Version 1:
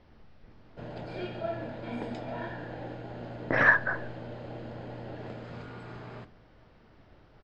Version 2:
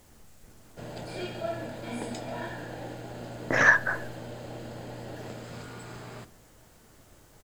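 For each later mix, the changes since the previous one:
speech: remove steep low-pass 5700 Hz 96 dB/oct; master: remove air absorption 230 m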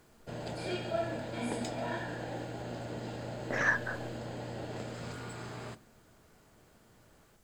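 speech -9.5 dB; background: entry -0.50 s

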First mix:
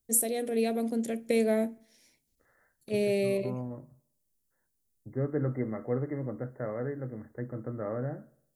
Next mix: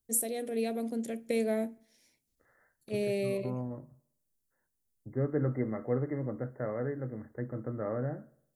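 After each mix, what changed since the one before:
first voice -4.0 dB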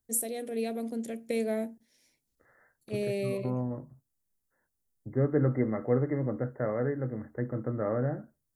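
second voice +5.0 dB; reverb: off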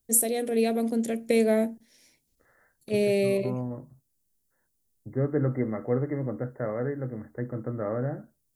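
first voice +8.0 dB

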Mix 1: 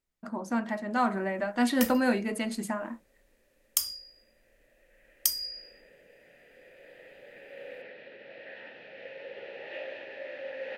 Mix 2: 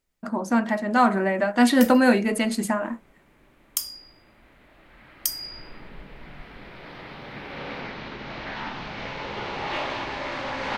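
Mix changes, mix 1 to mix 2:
speech +8.0 dB; second sound: remove vowel filter e

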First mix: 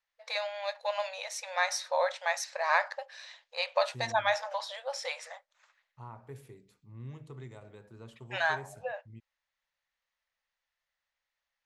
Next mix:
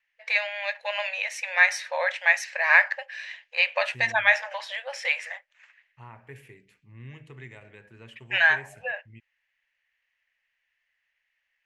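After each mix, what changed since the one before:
master: add band shelf 2200 Hz +14 dB 1.1 oct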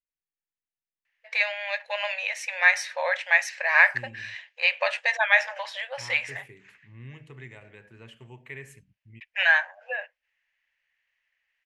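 first voice: entry +1.05 s

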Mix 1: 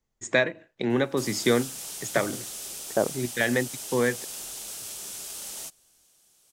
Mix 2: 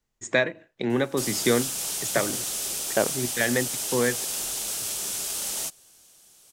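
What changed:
second voice: remove LPF 1100 Hz; background +7.5 dB

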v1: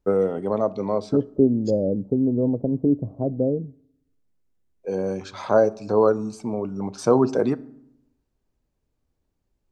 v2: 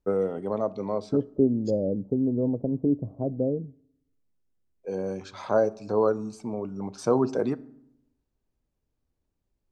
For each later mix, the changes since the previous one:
first voice -5.0 dB; second voice -4.0 dB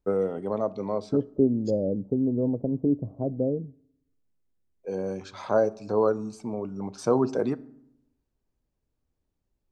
none

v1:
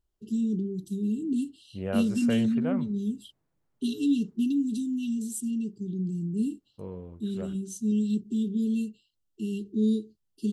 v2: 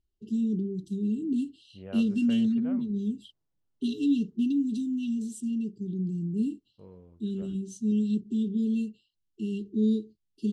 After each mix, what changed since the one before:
second voice -10.5 dB; master: add air absorption 76 m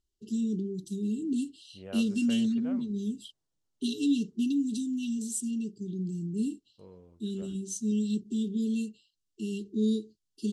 master: add tone controls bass -4 dB, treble +12 dB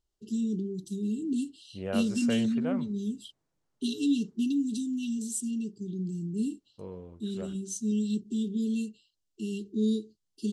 second voice +9.5 dB

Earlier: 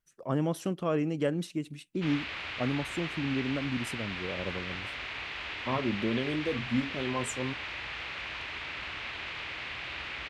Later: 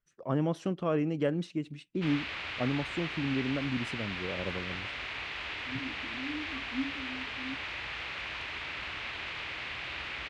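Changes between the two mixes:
first voice: add air absorption 100 m; second voice: add Butterworth band-pass 280 Hz, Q 7.5

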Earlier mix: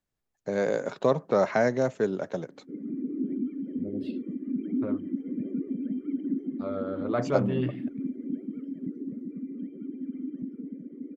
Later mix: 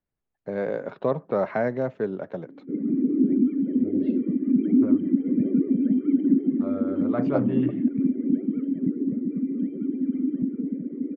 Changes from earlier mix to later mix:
background +10.5 dB; master: add air absorption 360 m

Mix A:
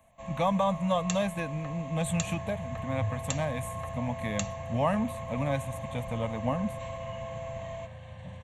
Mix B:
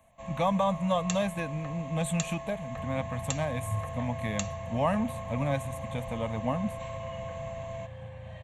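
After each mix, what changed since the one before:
second sound: entry +0.70 s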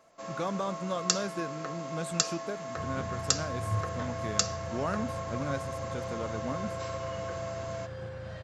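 speech -10.0 dB; first sound: add HPF 230 Hz; master: remove fixed phaser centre 1400 Hz, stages 6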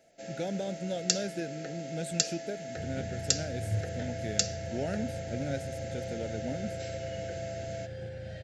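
master: add Butterworth band-stop 1100 Hz, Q 1.3

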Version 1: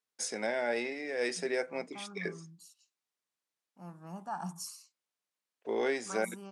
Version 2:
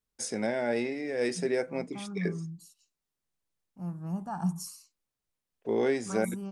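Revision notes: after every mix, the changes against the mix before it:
master: remove weighting filter A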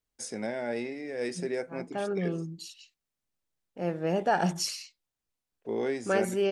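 first voice -3.5 dB; second voice: remove EQ curve 200 Hz 0 dB, 480 Hz -27 dB, 1100 Hz -1 dB, 1900 Hz -27 dB, 3600 Hz -23 dB, 10000 Hz 0 dB

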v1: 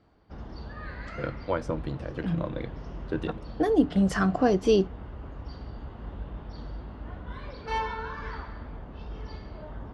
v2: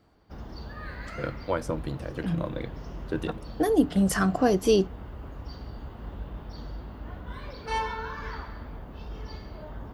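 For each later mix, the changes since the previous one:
master: remove air absorption 99 m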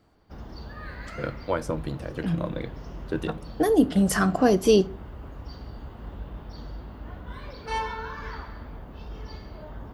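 reverb: on, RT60 0.45 s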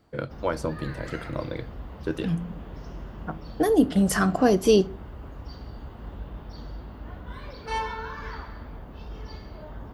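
first voice: entry -1.05 s

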